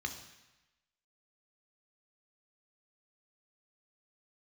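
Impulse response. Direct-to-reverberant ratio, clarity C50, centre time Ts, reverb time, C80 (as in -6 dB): 4.0 dB, 8.5 dB, 19 ms, 1.0 s, 11.0 dB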